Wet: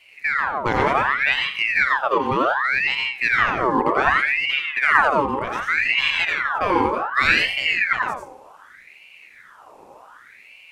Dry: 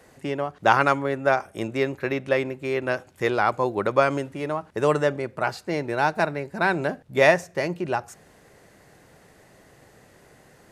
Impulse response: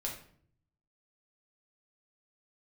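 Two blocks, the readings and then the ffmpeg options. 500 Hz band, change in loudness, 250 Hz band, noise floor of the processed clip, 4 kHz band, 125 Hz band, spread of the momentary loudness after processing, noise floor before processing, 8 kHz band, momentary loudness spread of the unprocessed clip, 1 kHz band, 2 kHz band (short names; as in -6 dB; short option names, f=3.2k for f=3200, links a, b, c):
-3.5 dB, +5.0 dB, 0.0 dB, -48 dBFS, +12.5 dB, -4.0 dB, 5 LU, -55 dBFS, n/a, 10 LU, +4.5 dB, +9.5 dB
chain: -filter_complex "[0:a]lowshelf=f=450:t=q:w=1.5:g=12,asplit=2[a][b];[1:a]atrim=start_sample=2205,adelay=87[c];[b][c]afir=irnorm=-1:irlink=0,volume=-1.5dB[d];[a][d]amix=inputs=2:normalize=0,aeval=exprs='val(0)*sin(2*PI*1600*n/s+1600*0.6/0.66*sin(2*PI*0.66*n/s))':c=same,volume=-3.5dB"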